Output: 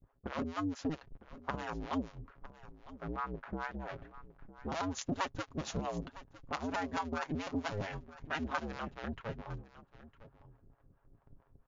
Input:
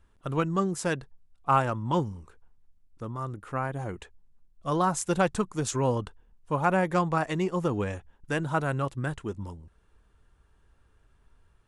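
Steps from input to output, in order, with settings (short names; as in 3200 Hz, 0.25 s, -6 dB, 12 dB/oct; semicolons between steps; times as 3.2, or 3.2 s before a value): cycle switcher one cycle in 2, inverted; low-pass opened by the level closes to 1000 Hz, open at -20.5 dBFS; gate with hold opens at -55 dBFS; comb 7.3 ms, depth 44%; compressor 2.5:1, threshold -35 dBFS, peak gain reduction 12 dB; harmonic tremolo 4.5 Hz, depth 100%, crossover 570 Hz; on a send: echo 0.957 s -17 dB; on the sum: gain +2.5 dB; MP3 160 kbps 16000 Hz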